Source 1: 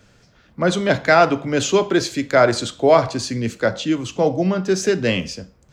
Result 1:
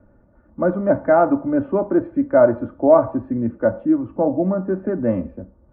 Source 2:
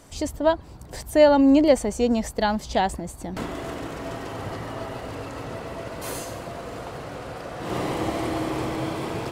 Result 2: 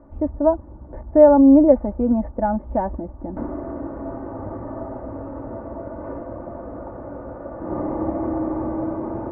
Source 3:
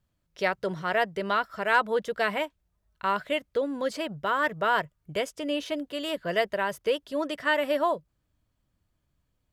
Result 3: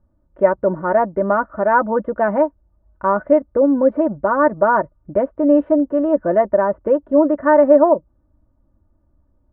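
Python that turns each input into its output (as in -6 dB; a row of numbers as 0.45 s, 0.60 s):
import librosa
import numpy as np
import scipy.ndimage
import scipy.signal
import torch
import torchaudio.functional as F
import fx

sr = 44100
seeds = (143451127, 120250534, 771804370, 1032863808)

y = scipy.signal.sosfilt(scipy.signal.bessel(6, 800.0, 'lowpass', norm='mag', fs=sr, output='sos'), x)
y = fx.dynamic_eq(y, sr, hz=390.0, q=3.7, threshold_db=-33.0, ratio=4.0, max_db=-5)
y = y + 0.67 * np.pad(y, (int(3.4 * sr / 1000.0), 0))[:len(y)]
y = librosa.util.normalize(y) * 10.0 ** (-1.5 / 20.0)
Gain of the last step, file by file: +1.0 dB, +2.0 dB, +13.5 dB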